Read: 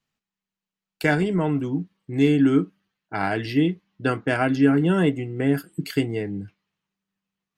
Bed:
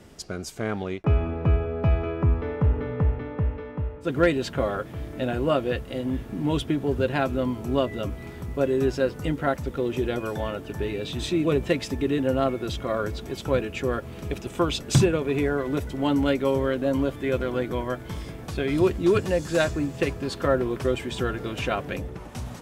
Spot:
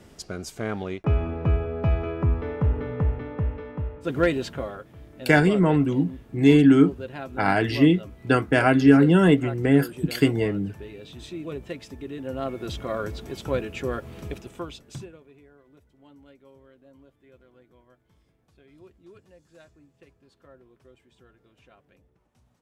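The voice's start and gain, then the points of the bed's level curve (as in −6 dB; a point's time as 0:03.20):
4.25 s, +3.0 dB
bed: 0:04.38 −1 dB
0:04.85 −11.5 dB
0:12.14 −11.5 dB
0:12.68 −2.5 dB
0:14.25 −2.5 dB
0:15.41 −30 dB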